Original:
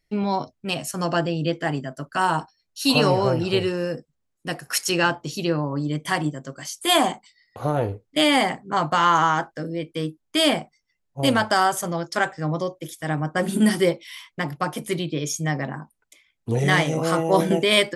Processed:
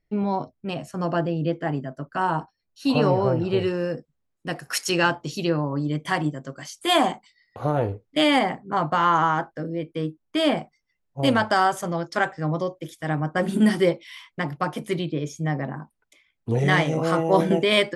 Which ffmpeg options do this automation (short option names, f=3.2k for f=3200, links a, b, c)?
-af "asetnsamples=n=441:p=0,asendcmd='3.59 lowpass f 2800;4.56 lowpass f 6100;5.49 lowpass f 3400;8.39 lowpass f 1600;10.57 lowpass f 3200;15.12 lowpass f 1300;15.8 lowpass f 3100',lowpass=f=1.1k:p=1"